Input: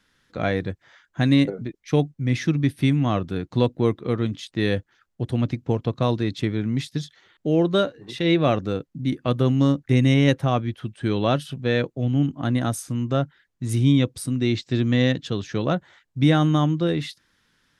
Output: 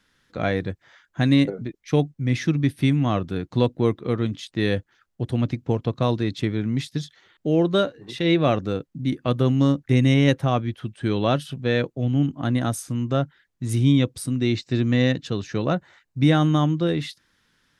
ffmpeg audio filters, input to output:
-filter_complex "[0:a]asettb=1/sr,asplit=3[s0][s1][s2];[s0]atrim=end=14.554[s3];[s1]atrim=start=14.55:end=16.29,asetpts=PTS-STARTPTS,afade=t=in:d=0.004:c=qsin,afade=t=out:st=1.736:d=0.004:c=qsin,bandreject=f=3300:w=10[s4];[s2]atrim=start=16.286[s5];[s3][s4]acrossfade=d=0.004:c1=hsin:c2=qsin[s6];[s6][s5]acrossfade=d=0.004:c1=qsin:c2=hsin"

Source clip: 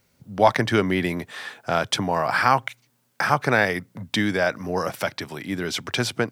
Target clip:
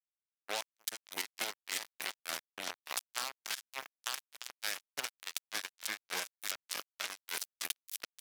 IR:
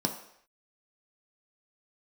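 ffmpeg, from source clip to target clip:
-filter_complex "[0:a]aecho=1:1:370|684.5|951.8|1179|1372:0.631|0.398|0.251|0.158|0.1,acrossover=split=400|6600[s0][s1][s2];[s0]acompressor=threshold=0.0501:ratio=4[s3];[s1]acompressor=threshold=0.0355:ratio=4[s4];[s2]acompressor=threshold=0.00398:ratio=4[s5];[s3][s4][s5]amix=inputs=3:normalize=0,tremolo=f=4.4:d=0.98,atempo=0.77,acrusher=bits=3:mix=0:aa=0.5,highpass=f=170:p=1,aderivative,acompressor=threshold=0.00794:ratio=6,volume=3.16"

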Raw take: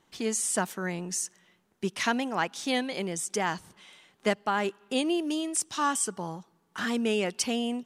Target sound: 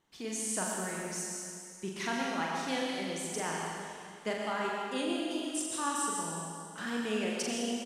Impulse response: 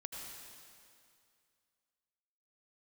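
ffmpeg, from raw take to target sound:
-filter_complex "[0:a]asplit=2[s0][s1];[s1]adelay=42,volume=0.631[s2];[s0][s2]amix=inputs=2:normalize=0[s3];[1:a]atrim=start_sample=2205[s4];[s3][s4]afir=irnorm=-1:irlink=0,volume=0.631"

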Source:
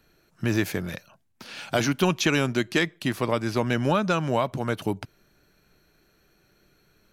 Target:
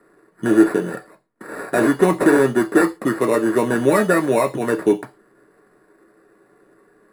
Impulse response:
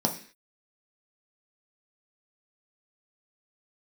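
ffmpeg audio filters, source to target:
-filter_complex "[0:a]acrusher=samples=14:mix=1:aa=0.000001,aeval=exprs='0.376*(cos(1*acos(clip(val(0)/0.376,-1,1)))-cos(1*PI/2))+0.0211*(cos(5*acos(clip(val(0)/0.376,-1,1)))-cos(5*PI/2))':c=same[s0];[1:a]atrim=start_sample=2205,asetrate=83790,aresample=44100[s1];[s0][s1]afir=irnorm=-1:irlink=0,volume=0.708"

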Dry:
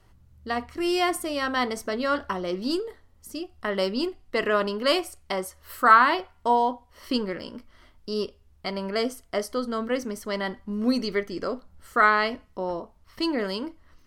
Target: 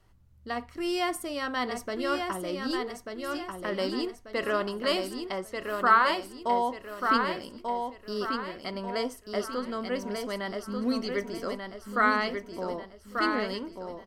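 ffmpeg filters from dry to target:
-filter_complex "[0:a]asettb=1/sr,asplit=3[s0][s1][s2];[s0]atrim=end=5.204[s3];[s1]atrim=start=5.2:end=5.95,asetpts=PTS-STARTPTS,afade=t=in:d=0.004:c=qsin,afade=t=out:st=0.746:d=0.004:c=qsin,highshelf=f=8000:g=-9[s4];[s2]atrim=start=5.946[s5];[s3][s4]acrossfade=d=0.004:c1=hsin:c2=qsin[s6];[s6][s5]acrossfade=d=0.004:c1=qsin:c2=hsin,aecho=1:1:1189|2378|3567|4756|5945:0.562|0.219|0.0855|0.0334|0.013,volume=0.562"

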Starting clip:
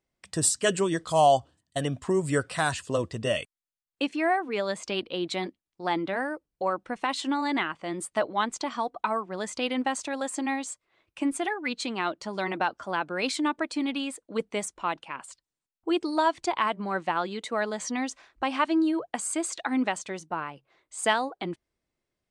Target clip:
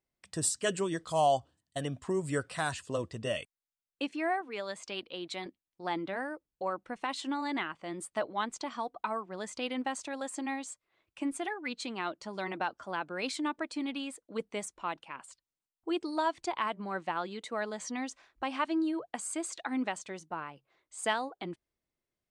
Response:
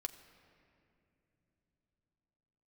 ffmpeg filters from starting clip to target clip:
-filter_complex "[0:a]asettb=1/sr,asplit=3[s0][s1][s2];[s0]atrim=end=4.414[s3];[s1]atrim=start=4.41:end=5.46,asetpts=PTS-STARTPTS,afade=t=in:d=0.004:c=qsin,afade=t=out:st=1.046:d=0.004:c=qsin,lowshelf=f=500:g=-6.5[s4];[s2]atrim=start=5.456[s5];[s3][s4]acrossfade=d=0.004:c1=hsin:c2=qsin[s6];[s6][s5]acrossfade=d=0.004:c1=qsin:c2=hsin,volume=0.473"

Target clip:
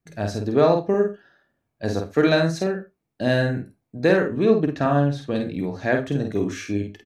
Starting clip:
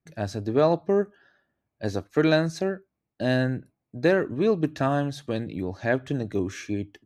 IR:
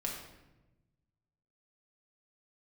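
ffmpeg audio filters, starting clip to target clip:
-filter_complex "[0:a]asettb=1/sr,asplit=3[s0][s1][s2];[s0]atrim=end=4.454[s3];[s1]atrim=start=4.45:end=5.35,asetpts=PTS-STARTPTS,afade=t=in:d=0.004:c=qsin,afade=t=out:st=0.896:d=0.004:c=qsin,aemphasis=mode=reproduction:type=50kf[s4];[s2]atrim=start=5.346[s5];[s3][s4]acrossfade=d=0.004:c1=hsin:c2=qsin[s6];[s6][s5]acrossfade=d=0.004:c1=qsin:c2=hsin,asplit=2[s7][s8];[s8]adelay=49,volume=0.596[s9];[s7][s9]amix=inputs=2:normalize=0,asplit=2[s10][s11];[1:a]atrim=start_sample=2205,afade=t=out:st=0.14:d=0.01,atrim=end_sample=6615[s12];[s11][s12]afir=irnorm=-1:irlink=0,volume=0.398[s13];[s10][s13]amix=inputs=2:normalize=0"

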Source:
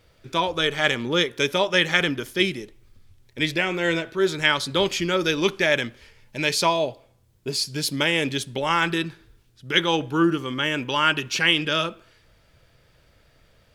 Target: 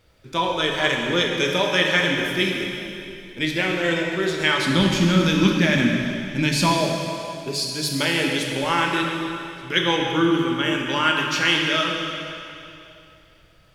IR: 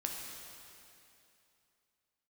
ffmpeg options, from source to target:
-filter_complex "[0:a]asettb=1/sr,asplit=3[s0][s1][s2];[s0]atrim=end=4.624[s3];[s1]atrim=start=4.62:end=6.72,asetpts=PTS-STARTPTS,afade=t=in:d=0.004:c=qsin,afade=t=out:st=2.096:d=0.004:c=qsin,lowshelf=f=320:t=q:w=3:g=8[s4];[s2]atrim=start=6.716[s5];[s3][s4]acrossfade=d=0.004:c1=hsin:c2=qsin[s6];[s6][s5]acrossfade=d=0.004:c1=qsin:c2=hsin[s7];[1:a]atrim=start_sample=2205[s8];[s7][s8]afir=irnorm=-1:irlink=0"

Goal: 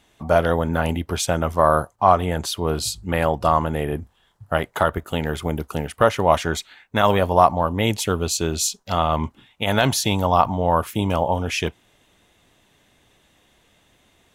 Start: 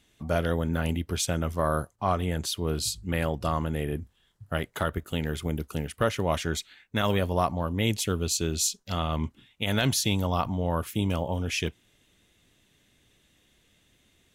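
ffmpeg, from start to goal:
-af "equalizer=f=850:w=0.95:g=10.5,volume=1.5"

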